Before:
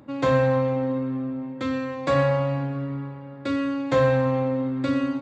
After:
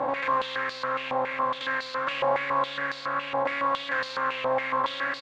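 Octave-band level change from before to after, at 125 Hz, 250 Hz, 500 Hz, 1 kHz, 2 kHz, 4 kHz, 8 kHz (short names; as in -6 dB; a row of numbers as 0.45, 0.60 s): -22.5 dB, -16.5 dB, -7.0 dB, +4.5 dB, +5.5 dB, +6.5 dB, n/a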